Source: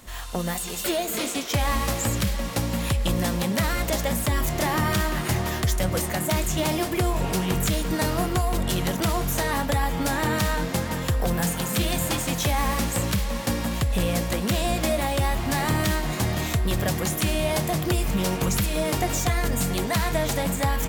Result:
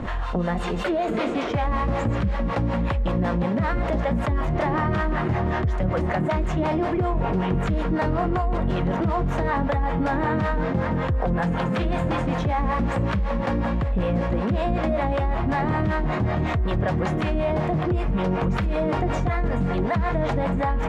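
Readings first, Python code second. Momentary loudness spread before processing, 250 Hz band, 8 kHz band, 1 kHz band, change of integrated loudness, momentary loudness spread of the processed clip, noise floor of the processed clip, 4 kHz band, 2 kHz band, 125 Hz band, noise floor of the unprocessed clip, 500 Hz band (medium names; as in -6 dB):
2 LU, +2.5 dB, under -20 dB, +2.5 dB, +0.5 dB, 1 LU, -26 dBFS, -10.5 dB, -1.5 dB, +1.5 dB, -30 dBFS, +2.5 dB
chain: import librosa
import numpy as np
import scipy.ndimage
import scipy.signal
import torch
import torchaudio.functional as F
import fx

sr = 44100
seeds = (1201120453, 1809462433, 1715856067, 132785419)

y = scipy.signal.sosfilt(scipy.signal.butter(2, 1500.0, 'lowpass', fs=sr, output='sos'), x)
y = fx.harmonic_tremolo(y, sr, hz=5.3, depth_pct=70, crossover_hz=490.0)
y = fx.env_flatten(y, sr, amount_pct=70)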